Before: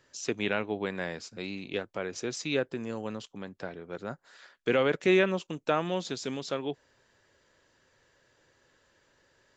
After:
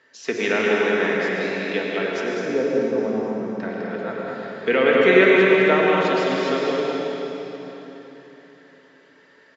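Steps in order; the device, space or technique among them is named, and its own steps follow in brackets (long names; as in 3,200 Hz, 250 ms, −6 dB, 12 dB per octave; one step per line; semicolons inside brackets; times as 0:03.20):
0:02.23–0:03.51: low-pass filter 1,100 Hz 24 dB per octave
station announcement (band-pass filter 320–4,100 Hz; parametric band 1,900 Hz +7.5 dB 0.35 octaves; loudspeakers that aren't time-aligned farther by 70 metres −5 dB, 88 metres −11 dB; convolution reverb RT60 3.7 s, pre-delay 86 ms, DRR −1.5 dB)
low-shelf EQ 230 Hz +7.5 dB
rectangular room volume 1,900 cubic metres, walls furnished, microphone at 1.6 metres
level +4.5 dB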